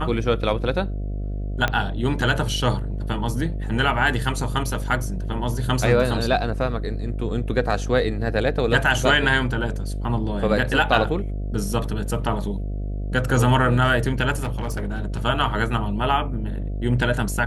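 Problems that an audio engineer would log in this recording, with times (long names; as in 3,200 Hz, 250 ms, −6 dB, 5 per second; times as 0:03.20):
mains buzz 50 Hz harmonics 14 −27 dBFS
0:01.68: click −8 dBFS
0:14.40–0:15.22: clipping −21.5 dBFS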